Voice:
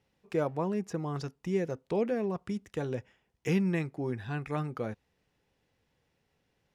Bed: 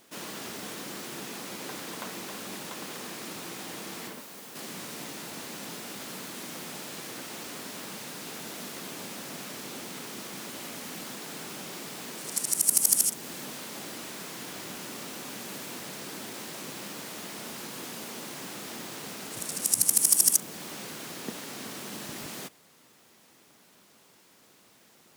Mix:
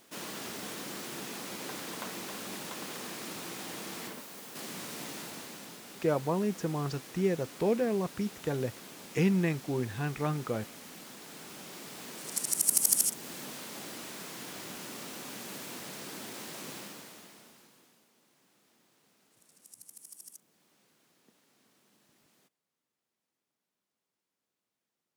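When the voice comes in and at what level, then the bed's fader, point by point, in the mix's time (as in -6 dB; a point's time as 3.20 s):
5.70 s, +1.5 dB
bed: 5.19 s -1.5 dB
5.78 s -8.5 dB
11.11 s -8.5 dB
12.43 s -3 dB
16.75 s -3 dB
18.10 s -29 dB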